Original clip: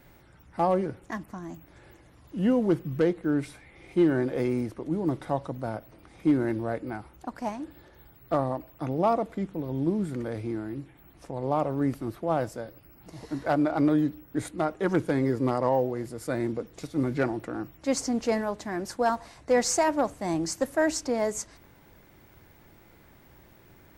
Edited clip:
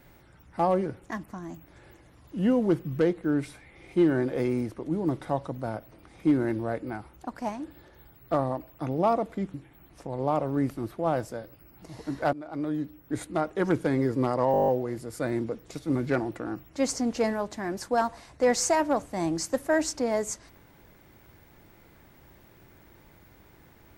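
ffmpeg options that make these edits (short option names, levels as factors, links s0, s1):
-filter_complex "[0:a]asplit=11[s0][s1][s2][s3][s4][s5][s6][s7][s8][s9][s10];[s0]atrim=end=9.542[s11];[s1]atrim=start=10.778:end=13.57,asetpts=PTS-STARTPTS,afade=t=out:st=2.788:d=0.004:c=hsin:silence=0.1[s12];[s2]atrim=start=13.57:end=15.782,asetpts=PTS-STARTPTS,afade=t=in:d=0.97:silence=0.1[s13];[s3]atrim=start=15.758:end=15.782[s14];[s4]atrim=start=15.758:end=15.782[s15];[s5]atrim=start=15.758:end=15.782[s16];[s6]atrim=start=15.758:end=15.782[s17];[s7]atrim=start=15.758:end=15.782[s18];[s8]atrim=start=15.758:end=15.782[s19];[s9]atrim=start=15.758:end=15.782[s20];[s10]atrim=start=15.758[s21];[s12][s13]concat=n=2:v=0:a=1[s22];[s11][s22]acrossfade=d=0.004:c1=hsin:c2=hsin[s23];[s23][s14]acrossfade=d=0.004:c1=hsin:c2=hsin[s24];[s24][s15]acrossfade=d=0.004:c1=hsin:c2=hsin[s25];[s25][s16]acrossfade=d=0.004:c1=hsin:c2=hsin[s26];[s26][s17]acrossfade=d=0.004:c1=hsin:c2=hsin[s27];[s27][s18]acrossfade=d=0.004:c1=hsin:c2=hsin[s28];[s28][s19]acrossfade=d=0.004:c1=hsin:c2=hsin[s29];[s29][s20]acrossfade=d=0.004:c1=hsin:c2=hsin[s30];[s30][s21]acrossfade=d=0.004:c1=hsin:c2=hsin"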